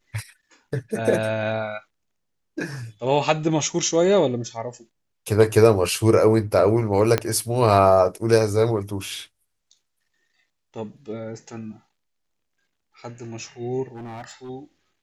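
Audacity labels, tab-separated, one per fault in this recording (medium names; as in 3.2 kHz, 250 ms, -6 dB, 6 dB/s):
7.180000	7.180000	pop -6 dBFS
13.880000	14.500000	clipped -33 dBFS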